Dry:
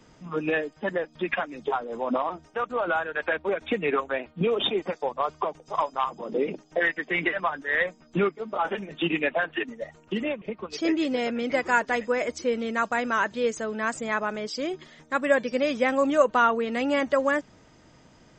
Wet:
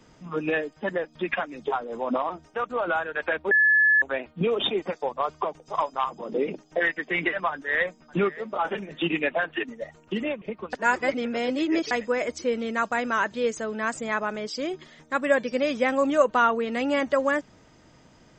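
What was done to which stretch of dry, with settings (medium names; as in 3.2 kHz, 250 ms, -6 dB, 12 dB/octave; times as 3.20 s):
3.51–4.02 s: bleep 1.72 kHz -15.5 dBFS
7.50–8.21 s: echo throw 580 ms, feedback 15%, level -18 dB
10.73–11.91 s: reverse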